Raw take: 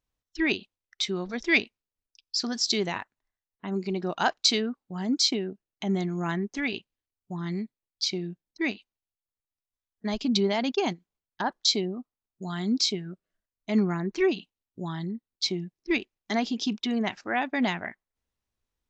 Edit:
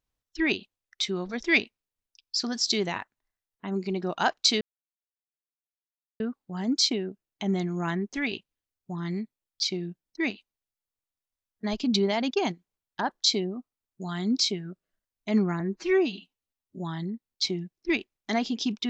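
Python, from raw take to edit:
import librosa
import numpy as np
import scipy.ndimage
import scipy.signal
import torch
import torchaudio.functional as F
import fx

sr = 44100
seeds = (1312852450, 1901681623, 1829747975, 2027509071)

y = fx.edit(x, sr, fx.insert_silence(at_s=4.61, length_s=1.59),
    fx.stretch_span(start_s=14.01, length_s=0.8, factor=1.5), tone=tone)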